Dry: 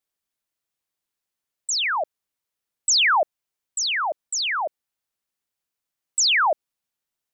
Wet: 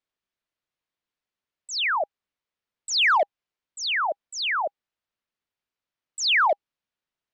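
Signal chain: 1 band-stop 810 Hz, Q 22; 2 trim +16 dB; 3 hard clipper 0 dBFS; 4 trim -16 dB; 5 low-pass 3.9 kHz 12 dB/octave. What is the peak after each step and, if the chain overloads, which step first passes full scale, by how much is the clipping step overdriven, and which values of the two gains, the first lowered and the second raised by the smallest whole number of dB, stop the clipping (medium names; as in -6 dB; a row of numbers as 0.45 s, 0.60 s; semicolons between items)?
-12.5 dBFS, +3.5 dBFS, 0.0 dBFS, -16.0 dBFS, -15.5 dBFS; step 2, 3.5 dB; step 2 +12 dB, step 4 -12 dB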